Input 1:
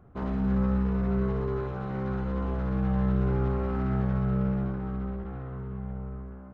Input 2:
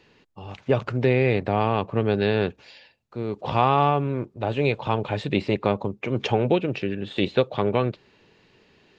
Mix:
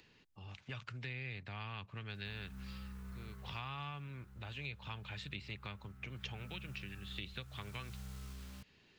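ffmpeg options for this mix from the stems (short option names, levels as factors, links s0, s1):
-filter_complex "[0:a]acrusher=bits=8:mix=0:aa=0.000001,adelay=2100,volume=3.55,afade=t=out:st=3.18:d=0.65:silence=0.281838,afade=t=in:st=6.03:d=0.61:silence=0.237137,afade=t=in:st=7.47:d=0.5:silence=0.354813[s0];[1:a]acompressor=mode=upward:threshold=0.00316:ratio=2.5,volume=0.398[s1];[s0][s1]amix=inputs=2:normalize=0,equalizer=f=550:w=0.52:g=-8.5,acrossover=split=160|1200[s2][s3][s4];[s2]acompressor=threshold=0.00398:ratio=4[s5];[s3]acompressor=threshold=0.00112:ratio=4[s6];[s4]acompressor=threshold=0.00708:ratio=4[s7];[s5][s6][s7]amix=inputs=3:normalize=0"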